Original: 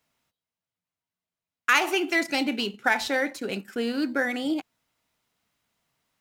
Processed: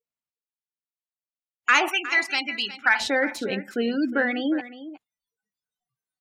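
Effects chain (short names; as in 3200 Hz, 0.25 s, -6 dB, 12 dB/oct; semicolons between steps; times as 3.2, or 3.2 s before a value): spectral noise reduction 27 dB; spectral gate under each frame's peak -25 dB strong; 1.88–3 resonant low shelf 760 Hz -12.5 dB, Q 1.5; in parallel at -8 dB: soft clip -15 dBFS, distortion -15 dB; on the sum: echo 0.361 s -14.5 dB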